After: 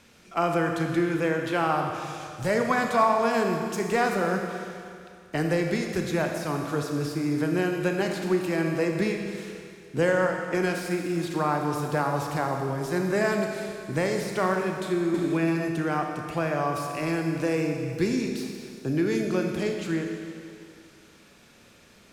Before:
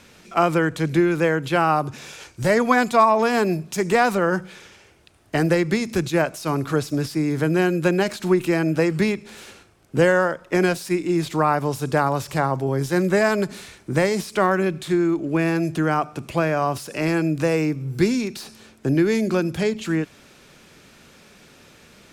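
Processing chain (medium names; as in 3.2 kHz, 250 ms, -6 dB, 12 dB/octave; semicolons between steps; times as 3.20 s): Schroeder reverb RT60 2.4 s, combs from 27 ms, DRR 2.5 dB; 15.14–15.68 s: three bands compressed up and down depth 70%; trim -7 dB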